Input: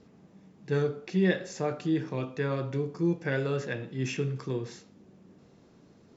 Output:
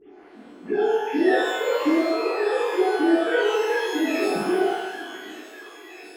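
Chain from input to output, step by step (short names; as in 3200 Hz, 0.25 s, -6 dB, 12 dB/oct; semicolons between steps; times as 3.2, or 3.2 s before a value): sine-wave speech; compressor, threshold -37 dBFS, peak gain reduction 18 dB; delay with a stepping band-pass 0.607 s, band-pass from 840 Hz, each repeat 0.7 oct, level -7 dB; shimmer reverb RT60 1 s, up +12 st, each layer -8 dB, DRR -10.5 dB; gain +7 dB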